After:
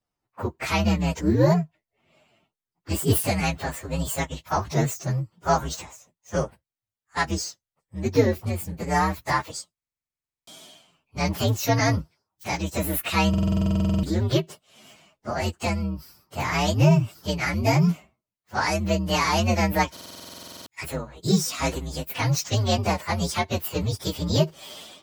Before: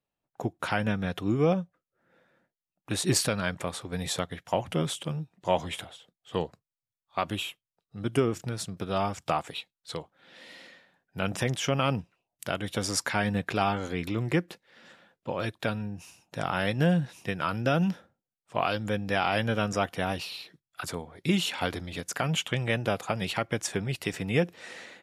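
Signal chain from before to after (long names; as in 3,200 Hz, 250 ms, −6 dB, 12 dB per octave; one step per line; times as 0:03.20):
partials spread apart or drawn together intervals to 127%
buffer that repeats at 0:09.73/0:13.29/0:19.92, samples 2,048, times 15
level +8 dB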